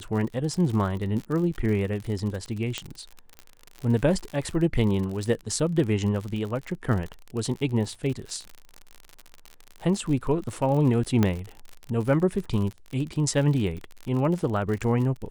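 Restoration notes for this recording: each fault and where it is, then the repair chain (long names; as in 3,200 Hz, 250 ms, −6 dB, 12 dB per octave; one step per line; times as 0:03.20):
surface crackle 56 per second −31 dBFS
0:02.78: click −14 dBFS
0:11.23: click −9 dBFS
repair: click removal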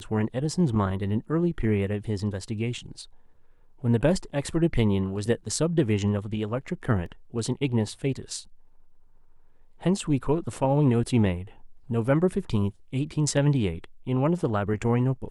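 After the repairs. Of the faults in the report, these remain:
0:11.23: click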